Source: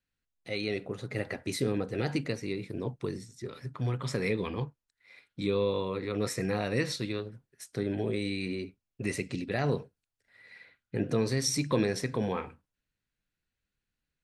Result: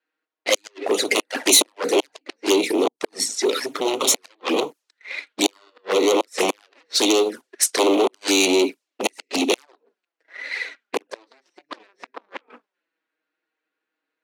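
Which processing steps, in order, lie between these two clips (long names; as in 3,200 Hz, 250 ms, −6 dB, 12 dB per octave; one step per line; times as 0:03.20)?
harmonic generator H 7 −6 dB, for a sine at −14 dBFS
gate with flip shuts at −18 dBFS, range −37 dB
in parallel at −4 dB: hard clipping −31 dBFS, distortion −10 dB
on the sum: leveller curve on the samples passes 2
low-pass that shuts in the quiet parts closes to 1,700 Hz, open at −23 dBFS
flanger swept by the level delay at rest 6.4 ms, full sweep at −19.5 dBFS
Butterworth high-pass 290 Hz 36 dB per octave
high-shelf EQ 4,300 Hz +11 dB
level +6 dB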